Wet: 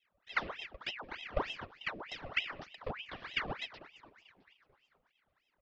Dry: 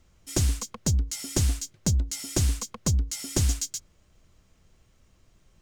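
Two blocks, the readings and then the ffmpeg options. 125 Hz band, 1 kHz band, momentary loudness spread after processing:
-26.0 dB, +3.0 dB, 9 LU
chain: -filter_complex "[0:a]acrossover=split=240[a][b];[a]aeval=exprs='sgn(val(0))*max(abs(val(0))-0.00211,0)':c=same[c];[b]acrusher=samples=20:mix=1:aa=0.000001:lfo=1:lforange=32:lforate=1.8[d];[c][d]amix=inputs=2:normalize=0,asplit=3[e][f][g];[e]bandpass=f=300:t=q:w=8,volume=0dB[h];[f]bandpass=f=870:t=q:w=8,volume=-6dB[i];[g]bandpass=f=2.24k:t=q:w=8,volume=-9dB[j];[h][i][j]amix=inputs=3:normalize=0,asplit=2[k][l];[l]asplit=7[m][n][o][p][q][r][s];[m]adelay=221,afreqshift=-80,volume=-16.5dB[t];[n]adelay=442,afreqshift=-160,volume=-20.4dB[u];[o]adelay=663,afreqshift=-240,volume=-24.3dB[v];[p]adelay=884,afreqshift=-320,volume=-28.1dB[w];[q]adelay=1105,afreqshift=-400,volume=-32dB[x];[r]adelay=1326,afreqshift=-480,volume=-35.9dB[y];[s]adelay=1547,afreqshift=-560,volume=-39.8dB[z];[t][u][v][w][x][y][z]amix=inputs=7:normalize=0[aa];[k][aa]amix=inputs=2:normalize=0,aresample=11025,aresample=44100,aeval=exprs='val(0)*sin(2*PI*1600*n/s+1600*0.85/3.3*sin(2*PI*3.3*n/s))':c=same,volume=5dB"

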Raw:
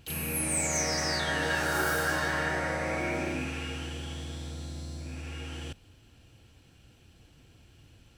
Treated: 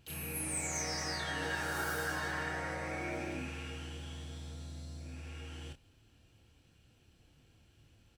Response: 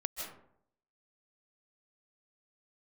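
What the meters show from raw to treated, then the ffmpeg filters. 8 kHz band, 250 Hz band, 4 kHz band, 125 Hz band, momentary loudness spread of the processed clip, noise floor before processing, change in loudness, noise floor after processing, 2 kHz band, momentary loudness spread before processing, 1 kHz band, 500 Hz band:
-7.5 dB, -8.0 dB, -7.5 dB, -6.5 dB, 12 LU, -59 dBFS, -7.5 dB, -67 dBFS, -7.5 dB, 13 LU, -7.0 dB, -9.0 dB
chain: -filter_complex "[0:a]asplit=2[a][b];[b]adelay=28,volume=-6.5dB[c];[a][c]amix=inputs=2:normalize=0,volume=-8.5dB"

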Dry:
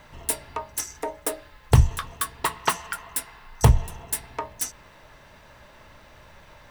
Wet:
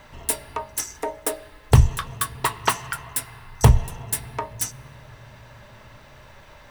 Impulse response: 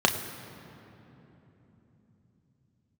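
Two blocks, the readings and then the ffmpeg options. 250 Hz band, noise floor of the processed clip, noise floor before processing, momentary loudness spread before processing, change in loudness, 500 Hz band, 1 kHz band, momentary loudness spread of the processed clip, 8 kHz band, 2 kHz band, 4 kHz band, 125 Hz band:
+2.5 dB, -48 dBFS, -51 dBFS, 11 LU, +2.0 dB, +2.0 dB, +2.0 dB, 12 LU, +2.0 dB, +2.0 dB, +2.0 dB, +2.5 dB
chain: -filter_complex "[0:a]asplit=2[a][b];[1:a]atrim=start_sample=2205,adelay=5[c];[b][c]afir=irnorm=-1:irlink=0,volume=-30dB[d];[a][d]amix=inputs=2:normalize=0,volume=2dB"

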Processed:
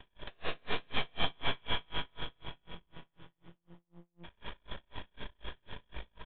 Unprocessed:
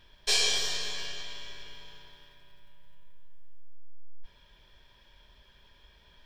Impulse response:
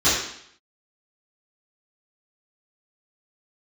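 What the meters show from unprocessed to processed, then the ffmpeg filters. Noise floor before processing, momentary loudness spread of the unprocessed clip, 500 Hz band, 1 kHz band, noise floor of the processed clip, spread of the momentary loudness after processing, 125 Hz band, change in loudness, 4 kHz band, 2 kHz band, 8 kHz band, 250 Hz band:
-61 dBFS, 22 LU, +1.0 dB, +6.0 dB, -81 dBFS, 23 LU, +8.0 dB, -11.5 dB, -7.5 dB, -2.5 dB, under -40 dB, +10.0 dB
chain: -filter_complex "[0:a]asplit=2[a][b];[b]adelay=37,volume=-2dB[c];[a][c]amix=inputs=2:normalize=0,afftfilt=real='re*lt(hypot(re,im),0.1)':imag='im*lt(hypot(re,im),0.1)':win_size=1024:overlap=0.75,highpass=f=47:p=1,acompressor=threshold=-41dB:ratio=10,aresample=11025,aeval=exprs='max(val(0),0)':c=same,aresample=44100,highshelf=f=2.3k:g=-6.5,bandreject=f=60:t=h:w=6,bandreject=f=120:t=h:w=6,bandreject=f=180:t=h:w=6,bandreject=f=240:t=h:w=6,bandreject=f=300:t=h:w=6,bandreject=f=360:t=h:w=6,bandreject=f=420:t=h:w=6,bandreject=f=480:t=h:w=6,bandreject=f=540:t=h:w=6,asplit=2[d][e];[e]acrusher=samples=20:mix=1:aa=0.000001:lfo=1:lforange=32:lforate=0.41,volume=-9dB[f];[d][f]amix=inputs=2:normalize=0,dynaudnorm=f=400:g=3:m=5dB,aecho=1:1:41|59:0.237|0.398,aresample=8000,aresample=44100,aeval=exprs='val(0)*pow(10,-39*(0.5-0.5*cos(2*PI*4*n/s))/20)':c=same,volume=17.5dB"

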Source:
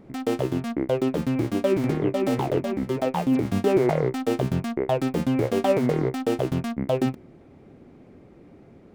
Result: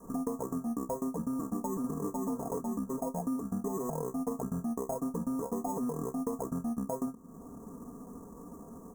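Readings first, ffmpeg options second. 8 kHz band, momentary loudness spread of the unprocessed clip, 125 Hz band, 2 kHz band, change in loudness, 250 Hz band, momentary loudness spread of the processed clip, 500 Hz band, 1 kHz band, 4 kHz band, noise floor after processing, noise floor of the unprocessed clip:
-1.5 dB, 5 LU, -14.5 dB, under -25 dB, -11.0 dB, -8.5 dB, 13 LU, -14.0 dB, -9.0 dB, under -25 dB, -50 dBFS, -51 dBFS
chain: -af "acrusher=samples=30:mix=1:aa=0.000001,asuperstop=centerf=3000:order=12:qfactor=0.61,aecho=1:1:4.3:0.8,adynamicequalizer=threshold=0.02:dfrequency=200:dqfactor=0.97:tfrequency=200:tqfactor=0.97:attack=5:release=100:ratio=0.375:range=2:mode=boostabove:tftype=bell,acompressor=threshold=-33dB:ratio=6"

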